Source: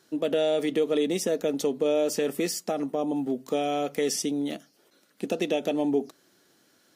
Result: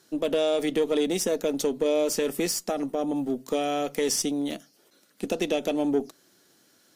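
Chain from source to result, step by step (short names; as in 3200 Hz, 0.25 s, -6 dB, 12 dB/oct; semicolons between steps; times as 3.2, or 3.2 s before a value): tone controls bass +1 dB, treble +4 dB; added harmonics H 6 -28 dB, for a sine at -13 dBFS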